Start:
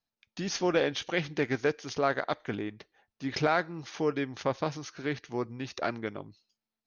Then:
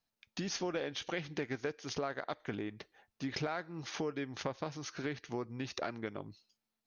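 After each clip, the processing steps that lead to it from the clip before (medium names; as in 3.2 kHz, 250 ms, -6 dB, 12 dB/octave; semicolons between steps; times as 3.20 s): compression 4:1, threshold -38 dBFS, peak gain reduction 14 dB; trim +2 dB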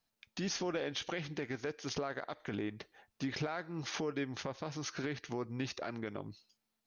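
peak limiter -30.5 dBFS, peak gain reduction 10 dB; trim +3 dB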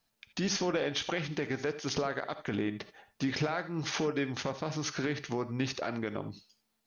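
gated-style reverb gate 100 ms rising, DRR 12 dB; trim +5.5 dB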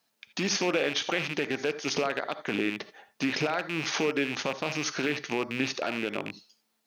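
rattle on loud lows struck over -40 dBFS, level -26 dBFS; high-pass 210 Hz 12 dB/octave; trim +4 dB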